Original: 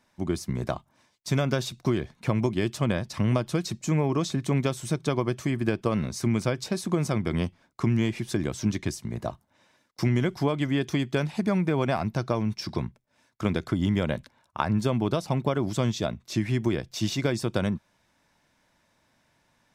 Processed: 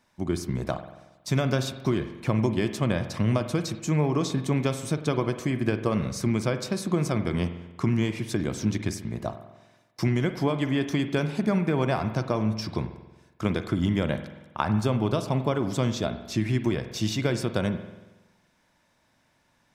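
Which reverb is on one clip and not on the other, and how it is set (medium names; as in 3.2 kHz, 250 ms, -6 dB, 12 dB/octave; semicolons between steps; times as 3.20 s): spring tank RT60 1.1 s, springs 46 ms, chirp 55 ms, DRR 9 dB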